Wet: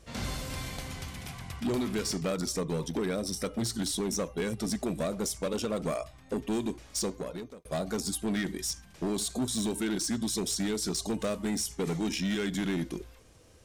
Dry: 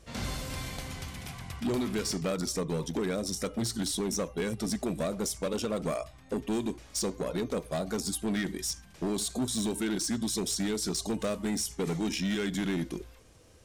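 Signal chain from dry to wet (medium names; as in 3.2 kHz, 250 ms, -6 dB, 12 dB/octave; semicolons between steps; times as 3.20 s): 2.88–3.52 s: band-stop 6.9 kHz, Q 6.5; 7.02–7.65 s: fade out linear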